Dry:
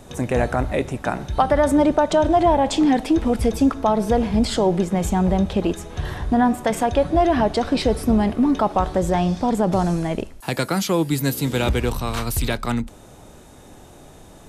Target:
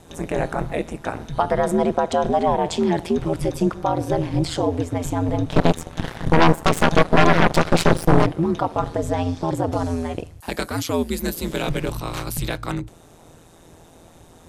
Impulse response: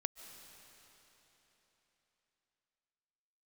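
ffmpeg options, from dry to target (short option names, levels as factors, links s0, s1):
-filter_complex "[0:a]equalizer=f=110:t=o:w=0.23:g=-14.5,aeval=exprs='val(0)*sin(2*PI*83*n/s)':c=same,asplit=3[s0][s1][s2];[s0]afade=t=out:st=5.5:d=0.02[s3];[s1]aeval=exprs='0.562*(cos(1*acos(clip(val(0)/0.562,-1,1)))-cos(1*PI/2))+0.251*(cos(8*acos(clip(val(0)/0.562,-1,1)))-cos(8*PI/2))':c=same,afade=t=in:st=5.5:d=0.02,afade=t=out:st=8.25:d=0.02[s4];[s2]afade=t=in:st=8.25:d=0.02[s5];[s3][s4][s5]amix=inputs=3:normalize=0"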